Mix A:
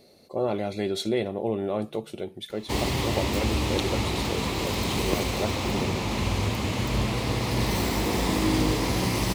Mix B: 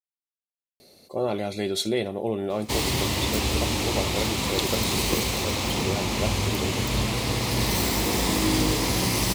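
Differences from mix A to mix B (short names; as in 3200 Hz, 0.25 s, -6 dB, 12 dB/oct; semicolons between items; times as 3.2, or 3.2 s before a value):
speech: entry +0.80 s; master: add high shelf 3600 Hz +8.5 dB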